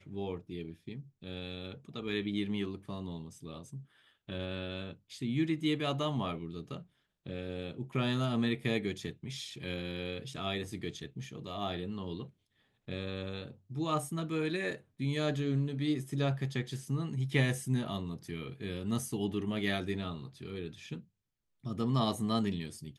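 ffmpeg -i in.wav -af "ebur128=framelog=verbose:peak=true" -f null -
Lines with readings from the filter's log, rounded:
Integrated loudness:
  I:         -35.8 LUFS
  Threshold: -46.2 LUFS
Loudness range:
  LRA:         6.1 LU
  Threshold: -56.2 LUFS
  LRA low:   -39.7 LUFS
  LRA high:  -33.6 LUFS
True peak:
  Peak:      -13.9 dBFS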